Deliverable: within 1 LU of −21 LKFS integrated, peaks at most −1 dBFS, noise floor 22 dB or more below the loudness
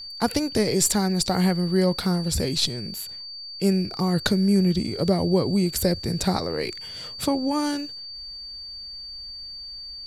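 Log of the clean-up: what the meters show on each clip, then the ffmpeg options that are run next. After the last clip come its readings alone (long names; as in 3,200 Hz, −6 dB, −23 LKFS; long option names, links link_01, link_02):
interfering tone 4,600 Hz; level of the tone −35 dBFS; integrated loudness −23.5 LKFS; sample peak −7.0 dBFS; target loudness −21.0 LKFS
→ -af "bandreject=frequency=4600:width=30"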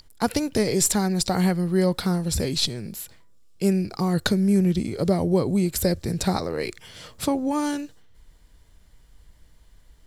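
interfering tone none found; integrated loudness −23.5 LKFS; sample peak −7.5 dBFS; target loudness −21.0 LKFS
→ -af "volume=2.5dB"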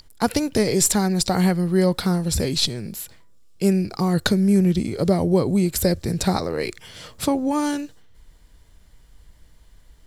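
integrated loudness −21.0 LKFS; sample peak −5.0 dBFS; background noise floor −51 dBFS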